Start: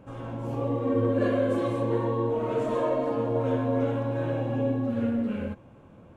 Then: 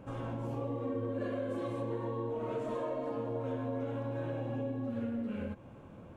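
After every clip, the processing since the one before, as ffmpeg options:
-af "acompressor=threshold=-35dB:ratio=4"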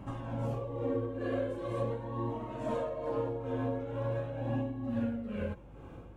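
-af "flanger=delay=1:depth=1.5:regen=-42:speed=0.42:shape=sinusoidal,tremolo=f=2.2:d=0.57,aeval=exprs='val(0)+0.001*(sin(2*PI*50*n/s)+sin(2*PI*2*50*n/s)/2+sin(2*PI*3*50*n/s)/3+sin(2*PI*4*50*n/s)/4+sin(2*PI*5*50*n/s)/5)':c=same,volume=8dB"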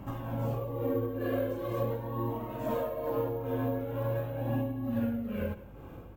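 -af "acrusher=samples=3:mix=1:aa=0.000001,aecho=1:1:172:0.126,volume=2dB"

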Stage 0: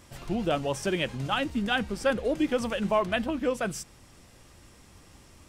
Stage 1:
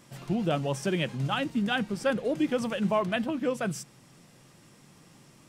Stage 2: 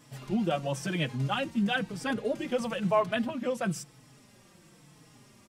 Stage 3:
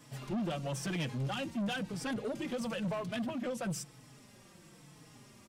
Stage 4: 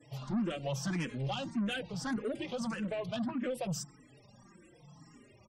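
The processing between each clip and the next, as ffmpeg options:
-af "lowshelf=f=100:t=q:w=3:g=-12.5,volume=-2dB"
-filter_complex "[0:a]asplit=2[a][b];[b]adelay=4.2,afreqshift=-1[c];[a][c]amix=inputs=2:normalize=1,volume=2dB"
-filter_complex "[0:a]acrossover=split=340|3000[a][b][c];[b]acompressor=threshold=-34dB:ratio=6[d];[a][d][c]amix=inputs=3:normalize=0,asoftclip=type=tanh:threshold=-31dB"
-filter_complex "[0:a]afftfilt=real='re*gte(hypot(re,im),0.00141)':imag='im*gte(hypot(re,im),0.00141)':win_size=1024:overlap=0.75,asplit=2[a][b];[b]afreqshift=1.7[c];[a][c]amix=inputs=2:normalize=1,volume=3dB"

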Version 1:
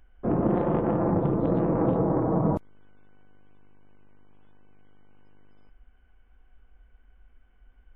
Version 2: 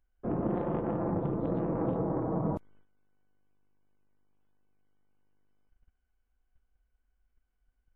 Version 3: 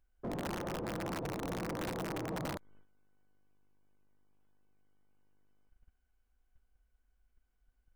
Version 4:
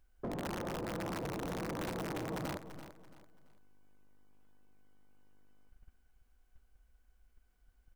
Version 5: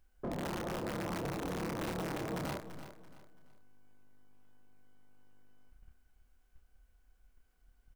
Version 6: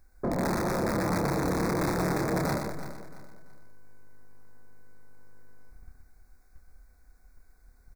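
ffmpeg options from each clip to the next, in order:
-af "agate=range=-12dB:threshold=-48dB:ratio=16:detection=peak,volume=-7dB"
-af "aeval=exprs='(mod(15*val(0)+1,2)-1)/15':c=same,acompressor=threshold=-37dB:ratio=4,volume=34.5dB,asoftclip=hard,volume=-34.5dB,volume=1dB"
-af "acompressor=threshold=-45dB:ratio=3,aecho=1:1:336|672|1008:0.251|0.0779|0.0241,volume=6dB"
-filter_complex "[0:a]asplit=2[a][b];[b]adelay=28,volume=-5dB[c];[a][c]amix=inputs=2:normalize=0"
-af "asuperstop=centerf=3000:order=4:qfactor=1.8,aecho=1:1:122:0.531,volume=9dB"

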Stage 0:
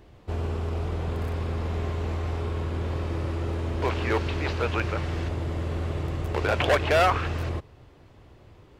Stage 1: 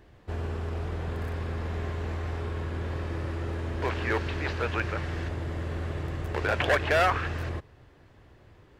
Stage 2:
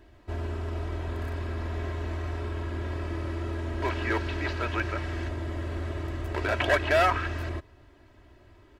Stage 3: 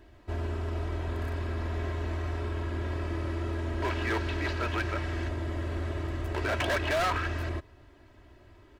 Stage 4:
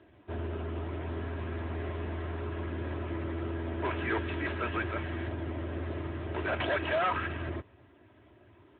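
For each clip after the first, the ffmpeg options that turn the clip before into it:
-af "equalizer=f=1.7k:t=o:w=0.42:g=7,volume=-3.5dB"
-af "aecho=1:1:3.1:0.67,volume=-1.5dB"
-af "volume=24.5dB,asoftclip=hard,volume=-24.5dB"
-ar 8000 -c:a libopencore_amrnb -b:a 10200

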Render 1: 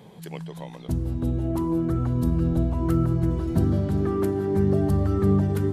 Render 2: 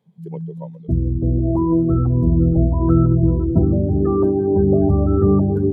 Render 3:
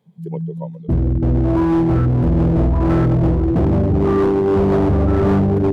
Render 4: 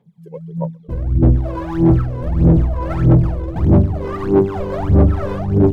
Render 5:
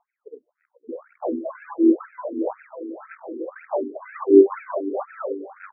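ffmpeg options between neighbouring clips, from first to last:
-af "afftdn=nr=31:nf=-29,bandreject=f=50:t=h:w=6,bandreject=f=100:t=h:w=6,bandreject=f=150:t=h:w=6,bandreject=f=200:t=h:w=6,bandreject=f=250:t=h:w=6,volume=8dB"
-af "asoftclip=type=hard:threshold=-16dB,volume=4dB"
-af "aphaser=in_gain=1:out_gain=1:delay=2:decay=0.8:speed=1.6:type=sinusoidal,volume=-7.5dB"
-af "tremolo=f=0.88:d=0.46,afftfilt=real='re*between(b*sr/1024,320*pow(1900/320,0.5+0.5*sin(2*PI*2*pts/sr))/1.41,320*pow(1900/320,0.5+0.5*sin(2*PI*2*pts/sr))*1.41)':imag='im*between(b*sr/1024,320*pow(1900/320,0.5+0.5*sin(2*PI*2*pts/sr))/1.41,320*pow(1900/320,0.5+0.5*sin(2*PI*2*pts/sr))*1.41)':win_size=1024:overlap=0.75,volume=3.5dB"

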